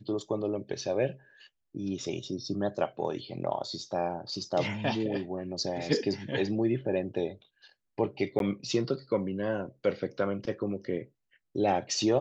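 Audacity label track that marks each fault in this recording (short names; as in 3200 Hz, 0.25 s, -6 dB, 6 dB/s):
8.390000	8.400000	gap 12 ms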